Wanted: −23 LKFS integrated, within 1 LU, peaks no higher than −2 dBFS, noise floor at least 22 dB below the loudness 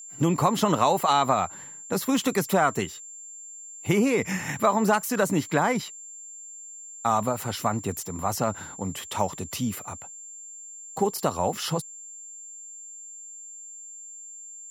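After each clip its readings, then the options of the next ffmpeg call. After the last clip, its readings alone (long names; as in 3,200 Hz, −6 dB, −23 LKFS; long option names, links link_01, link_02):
interfering tone 7,300 Hz; level of the tone −40 dBFS; integrated loudness −25.5 LKFS; sample peak −7.5 dBFS; target loudness −23.0 LKFS
→ -af "bandreject=frequency=7300:width=30"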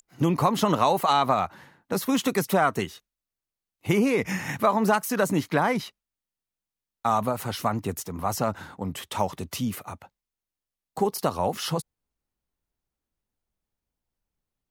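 interfering tone none found; integrated loudness −26.0 LKFS; sample peak −7.5 dBFS; target loudness −23.0 LKFS
→ -af "volume=3dB"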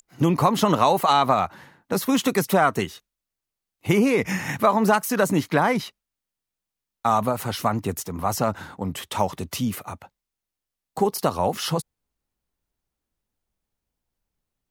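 integrated loudness −23.0 LKFS; sample peak −4.5 dBFS; background noise floor −87 dBFS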